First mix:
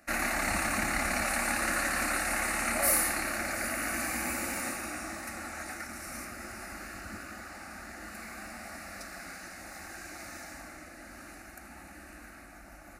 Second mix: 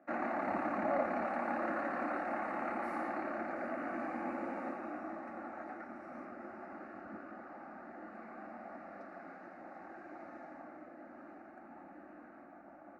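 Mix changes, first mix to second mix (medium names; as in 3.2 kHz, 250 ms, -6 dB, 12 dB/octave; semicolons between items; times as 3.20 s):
speech: entry -1.90 s; master: add Butterworth band-pass 490 Hz, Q 0.6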